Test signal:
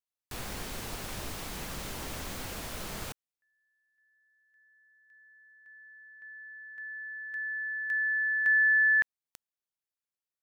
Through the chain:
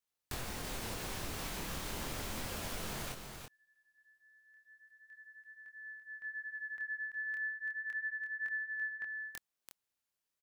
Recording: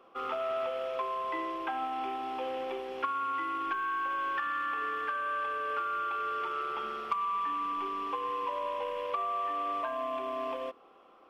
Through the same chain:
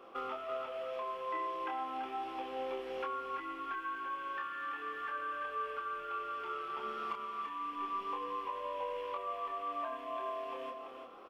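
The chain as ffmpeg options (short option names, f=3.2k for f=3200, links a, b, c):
-af "acompressor=threshold=-43dB:ratio=6:attack=15:release=324:detection=peak,flanger=delay=22.5:depth=6.3:speed=0.34,aecho=1:1:336:0.473,volume=7.5dB"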